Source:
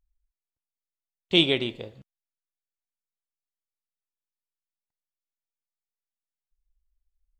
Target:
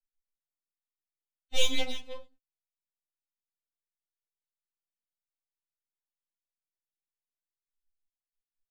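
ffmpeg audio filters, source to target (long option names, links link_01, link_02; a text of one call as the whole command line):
ffmpeg -i in.wav -af "agate=range=-16dB:threshold=-42dB:ratio=16:detection=peak,aecho=1:1:2:0.56,atempo=0.85,aeval=exprs='max(val(0),0)':channel_layout=same,afftfilt=real='re*3.46*eq(mod(b,12),0)':imag='im*3.46*eq(mod(b,12),0)':win_size=2048:overlap=0.75,volume=-1.5dB" out.wav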